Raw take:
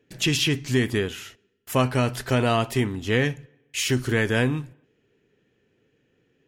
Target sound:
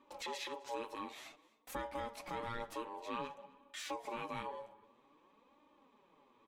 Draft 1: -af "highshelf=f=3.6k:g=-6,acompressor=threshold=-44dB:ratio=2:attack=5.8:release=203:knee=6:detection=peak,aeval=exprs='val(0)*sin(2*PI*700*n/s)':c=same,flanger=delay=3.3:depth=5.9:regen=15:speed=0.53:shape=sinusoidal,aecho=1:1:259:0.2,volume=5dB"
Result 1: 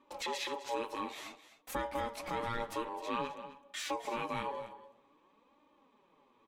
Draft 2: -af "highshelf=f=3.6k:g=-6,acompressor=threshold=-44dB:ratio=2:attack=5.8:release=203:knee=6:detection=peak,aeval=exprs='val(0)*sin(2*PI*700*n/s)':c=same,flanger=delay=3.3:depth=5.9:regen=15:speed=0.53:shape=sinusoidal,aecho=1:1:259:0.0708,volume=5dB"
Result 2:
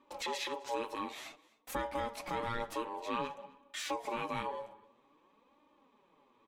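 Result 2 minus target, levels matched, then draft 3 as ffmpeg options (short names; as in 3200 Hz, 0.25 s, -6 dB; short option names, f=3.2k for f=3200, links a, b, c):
compressor: peak gain reduction -5 dB
-af "highshelf=f=3.6k:g=-6,acompressor=threshold=-54.5dB:ratio=2:attack=5.8:release=203:knee=6:detection=peak,aeval=exprs='val(0)*sin(2*PI*700*n/s)':c=same,flanger=delay=3.3:depth=5.9:regen=15:speed=0.53:shape=sinusoidal,aecho=1:1:259:0.0708,volume=5dB"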